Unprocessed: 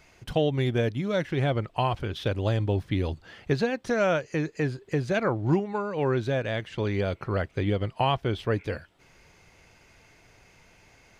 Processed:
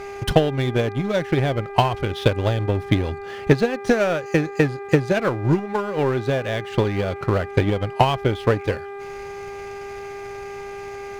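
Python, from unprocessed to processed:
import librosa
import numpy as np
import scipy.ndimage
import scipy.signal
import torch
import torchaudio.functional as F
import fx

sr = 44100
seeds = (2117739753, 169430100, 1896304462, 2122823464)

y = fx.power_curve(x, sr, exponent=0.7)
y = fx.transient(y, sr, attack_db=11, sustain_db=-5)
y = fx.dmg_buzz(y, sr, base_hz=400.0, harmonics=6, level_db=-33.0, tilt_db=-7, odd_only=False)
y = F.gain(torch.from_numpy(y), -1.0).numpy()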